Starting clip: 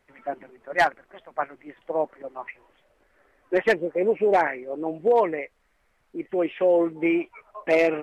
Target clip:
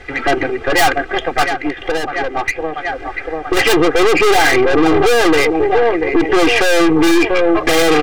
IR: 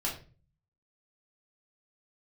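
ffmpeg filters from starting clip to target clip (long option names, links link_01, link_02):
-filter_complex "[0:a]lowpass=4700,equalizer=frequency=990:width_type=o:width=0.32:gain=-14.5,aecho=1:1:688|1376|2064|2752:0.112|0.0572|0.0292|0.0149,aeval=exprs='(tanh(89.1*val(0)+0.4)-tanh(0.4))/89.1':channel_layout=same,equalizer=frequency=410:width_type=o:width=0.57:gain=-4.5,asettb=1/sr,asplit=3[link_01][link_02][link_03];[link_01]atrim=end=1.434[link_04];[link_02]atrim=start=1.43:end=3.57,asetpts=PTS-STARTPTS,afade=type=in:duration=0.004:curve=qsin,afade=type=out:start_time=2.136:duration=0.004:curve=qsin,acompressor=threshold=-49dB:ratio=6[link_05];[link_03]atrim=start=3.566[link_06];[link_04][link_05]acrossfade=duration=0.004:curve1=hsin:curve2=qsin[link_07];[link_07][link_06]acrossfade=duration=0.004:curve1=qsin:curve2=hsin,aecho=1:1:2.5:0.95,alimiter=level_in=34dB:limit=-1dB:release=50:level=0:latency=1,volume=-3dB"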